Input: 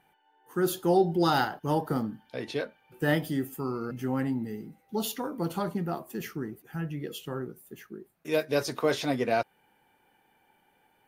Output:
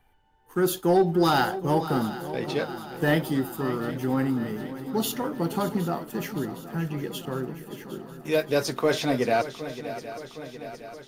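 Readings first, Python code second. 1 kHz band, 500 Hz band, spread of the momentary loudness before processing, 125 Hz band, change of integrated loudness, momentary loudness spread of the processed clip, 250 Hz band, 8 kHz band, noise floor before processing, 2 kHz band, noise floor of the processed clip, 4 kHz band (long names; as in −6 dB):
+3.5 dB, +3.5 dB, 14 LU, +4.0 dB, +3.5 dB, 16 LU, +4.0 dB, +4.0 dB, −68 dBFS, +3.5 dB, −52 dBFS, +4.0 dB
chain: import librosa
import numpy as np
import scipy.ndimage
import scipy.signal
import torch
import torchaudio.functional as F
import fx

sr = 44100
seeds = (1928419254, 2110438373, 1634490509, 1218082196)

y = fx.leveller(x, sr, passes=1)
y = fx.dmg_noise_colour(y, sr, seeds[0], colour='brown', level_db=-66.0)
y = fx.echo_swing(y, sr, ms=763, ratio=3, feedback_pct=61, wet_db=-13.5)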